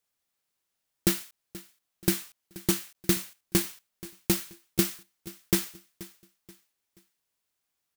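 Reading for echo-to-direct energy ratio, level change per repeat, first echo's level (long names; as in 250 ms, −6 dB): −18.0 dB, −9.0 dB, −18.5 dB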